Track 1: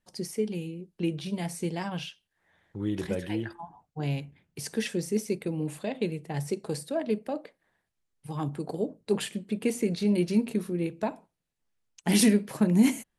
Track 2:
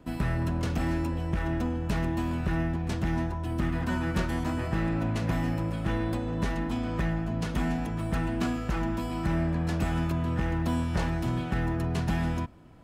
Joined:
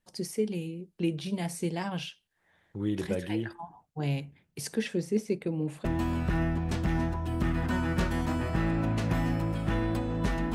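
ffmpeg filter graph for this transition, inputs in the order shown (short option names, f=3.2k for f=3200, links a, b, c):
-filter_complex "[0:a]asettb=1/sr,asplit=3[a][b][c];[a]atrim=end=4.754[d];[b]atrim=start=4.75:end=5.85,asetpts=PTS-STARTPTS,afade=t=in:d=0.004:c=qsin,afade=t=out:st=1.096:d=0.004:c=qsin,lowpass=f=3k:p=1[e];[c]atrim=start=5.846[f];[d][e]acrossfade=d=0.004:c1=hsin:c2=qsin[g];[g][f]acrossfade=d=0.004:c1=qsin:c2=hsin,apad=whole_dur=10.54,atrim=end=10.54,atrim=end=5.852[h];[1:a]atrim=start=2.028:end=6.72[i];[h][i]acrossfade=d=0.004:c1=hsin:c2=hsin"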